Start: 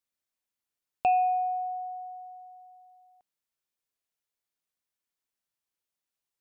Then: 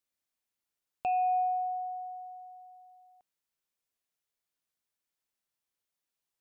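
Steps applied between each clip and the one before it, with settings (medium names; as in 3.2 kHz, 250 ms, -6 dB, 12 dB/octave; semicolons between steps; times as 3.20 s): peak limiter -24 dBFS, peak gain reduction 7.5 dB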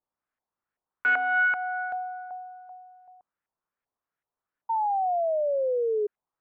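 self-modulated delay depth 0.51 ms; LFO low-pass saw up 2.6 Hz 810–1800 Hz; painted sound fall, 4.69–6.07 s, 410–920 Hz -28 dBFS; trim +2.5 dB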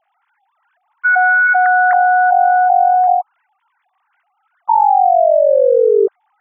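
formants replaced by sine waves; level flattener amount 100%; trim +7.5 dB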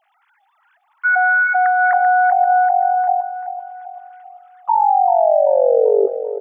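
feedback delay 388 ms, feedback 38%, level -10.5 dB; on a send at -21.5 dB: reverberation RT60 0.75 s, pre-delay 6 ms; on the sum: tape noise reduction on one side only encoder only; trim -3 dB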